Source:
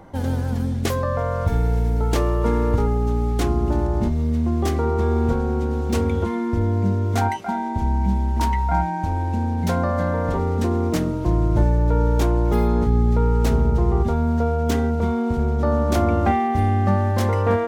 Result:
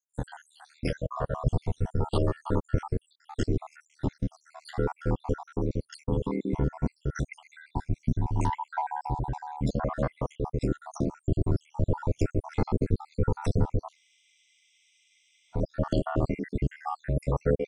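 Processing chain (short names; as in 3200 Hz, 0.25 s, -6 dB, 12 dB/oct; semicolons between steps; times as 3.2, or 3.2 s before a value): random spectral dropouts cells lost 76%; ring modulator 38 Hz; spectral freeze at 13.97, 1.58 s; gain -1.5 dB; AAC 96 kbps 22050 Hz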